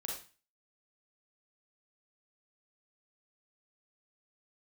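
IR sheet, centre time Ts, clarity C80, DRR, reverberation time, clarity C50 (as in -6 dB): 39 ms, 8.5 dB, -2.0 dB, 0.35 s, 2.5 dB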